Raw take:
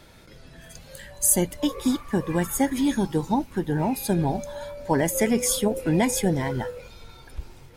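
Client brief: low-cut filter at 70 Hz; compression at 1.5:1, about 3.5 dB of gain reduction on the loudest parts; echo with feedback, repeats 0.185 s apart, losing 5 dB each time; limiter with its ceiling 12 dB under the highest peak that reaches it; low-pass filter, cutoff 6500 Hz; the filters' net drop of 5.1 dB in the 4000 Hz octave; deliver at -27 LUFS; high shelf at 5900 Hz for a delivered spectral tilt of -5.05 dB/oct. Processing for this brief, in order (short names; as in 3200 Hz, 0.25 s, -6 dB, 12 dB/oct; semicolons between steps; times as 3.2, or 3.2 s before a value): HPF 70 Hz; LPF 6500 Hz; bell 4000 Hz -8 dB; high shelf 5900 Hz +5 dB; compressor 1.5:1, threshold -27 dBFS; limiter -24 dBFS; feedback echo 0.185 s, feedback 56%, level -5 dB; gain +5 dB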